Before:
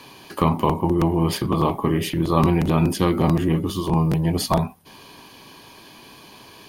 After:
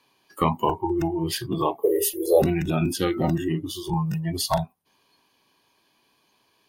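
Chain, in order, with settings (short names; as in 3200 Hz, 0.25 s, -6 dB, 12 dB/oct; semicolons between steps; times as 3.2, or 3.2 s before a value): 1.83–2.42 EQ curve 100 Hz 0 dB, 190 Hz -23 dB, 480 Hz +14 dB, 1200 Hz -13 dB, 2100 Hz -6 dB, 3100 Hz -7 dB, 11000 Hz +13 dB; spectral noise reduction 20 dB; low shelf 270 Hz -7 dB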